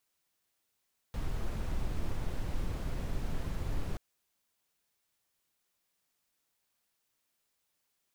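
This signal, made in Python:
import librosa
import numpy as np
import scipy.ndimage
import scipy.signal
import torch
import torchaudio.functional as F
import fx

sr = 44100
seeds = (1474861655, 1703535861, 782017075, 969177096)

y = fx.noise_colour(sr, seeds[0], length_s=2.83, colour='brown', level_db=-32.5)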